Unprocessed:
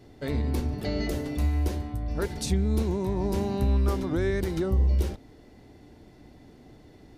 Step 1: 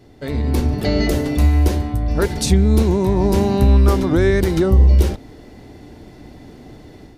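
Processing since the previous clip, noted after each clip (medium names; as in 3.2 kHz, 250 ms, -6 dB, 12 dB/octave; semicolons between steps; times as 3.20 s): level rider gain up to 7.5 dB; trim +4 dB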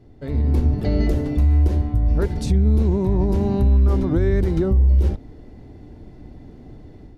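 tilt EQ -2.5 dB/octave; loudness maximiser +1 dB; trim -9 dB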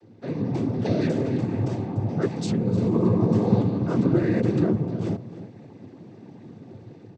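octave divider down 1 oct, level -4 dB; noise-vocoded speech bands 16; echo from a far wall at 52 m, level -13 dB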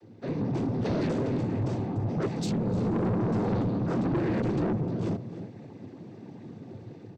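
saturation -23.5 dBFS, distortion -9 dB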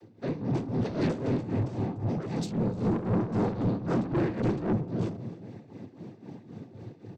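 tremolo 3.8 Hz, depth 75%; trim +2.5 dB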